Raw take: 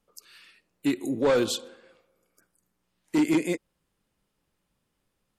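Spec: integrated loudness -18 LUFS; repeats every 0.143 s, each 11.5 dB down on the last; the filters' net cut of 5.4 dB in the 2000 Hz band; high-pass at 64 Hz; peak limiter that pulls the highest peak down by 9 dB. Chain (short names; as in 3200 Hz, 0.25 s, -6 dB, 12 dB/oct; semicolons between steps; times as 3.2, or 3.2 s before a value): HPF 64 Hz; bell 2000 Hz -7 dB; limiter -24 dBFS; feedback echo 0.143 s, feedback 27%, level -11.5 dB; gain +15 dB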